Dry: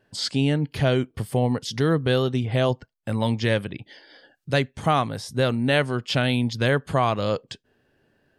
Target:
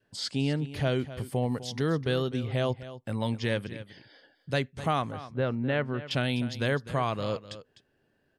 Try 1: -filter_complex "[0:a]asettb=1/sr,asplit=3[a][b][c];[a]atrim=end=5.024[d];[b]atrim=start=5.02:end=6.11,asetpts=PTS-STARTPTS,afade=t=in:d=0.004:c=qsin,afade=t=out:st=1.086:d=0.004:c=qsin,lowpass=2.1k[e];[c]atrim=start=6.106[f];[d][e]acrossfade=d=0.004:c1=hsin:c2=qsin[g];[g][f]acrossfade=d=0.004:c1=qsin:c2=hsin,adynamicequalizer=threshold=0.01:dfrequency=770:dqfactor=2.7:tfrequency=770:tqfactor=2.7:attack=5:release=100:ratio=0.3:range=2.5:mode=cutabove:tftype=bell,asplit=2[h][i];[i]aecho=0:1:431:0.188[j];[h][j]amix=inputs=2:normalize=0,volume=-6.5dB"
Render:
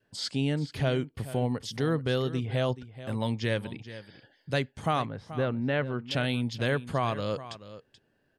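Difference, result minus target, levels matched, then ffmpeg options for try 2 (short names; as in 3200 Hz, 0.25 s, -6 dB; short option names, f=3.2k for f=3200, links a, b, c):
echo 0.178 s late
-filter_complex "[0:a]asettb=1/sr,asplit=3[a][b][c];[a]atrim=end=5.024[d];[b]atrim=start=5.02:end=6.11,asetpts=PTS-STARTPTS,afade=t=in:d=0.004:c=qsin,afade=t=out:st=1.086:d=0.004:c=qsin,lowpass=2.1k[e];[c]atrim=start=6.106[f];[d][e]acrossfade=d=0.004:c1=hsin:c2=qsin[g];[g][f]acrossfade=d=0.004:c1=qsin:c2=hsin,adynamicequalizer=threshold=0.01:dfrequency=770:dqfactor=2.7:tfrequency=770:tqfactor=2.7:attack=5:release=100:ratio=0.3:range=2.5:mode=cutabove:tftype=bell,asplit=2[h][i];[i]aecho=0:1:253:0.188[j];[h][j]amix=inputs=2:normalize=0,volume=-6.5dB"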